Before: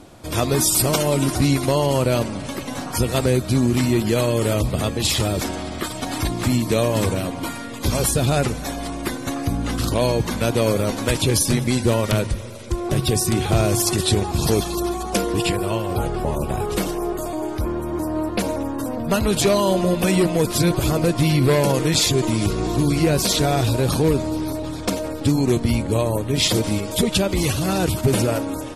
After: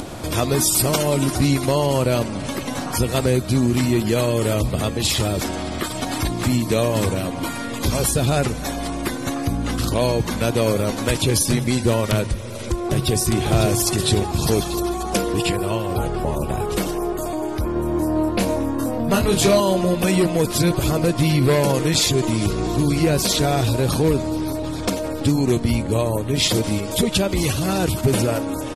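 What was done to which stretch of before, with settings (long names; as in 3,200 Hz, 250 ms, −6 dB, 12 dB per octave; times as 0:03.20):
0:12.46–0:13.16: delay throw 550 ms, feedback 55%, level −5.5 dB
0:17.73–0:19.60: double-tracking delay 26 ms −3.5 dB
whole clip: upward compression, threshold −20 dBFS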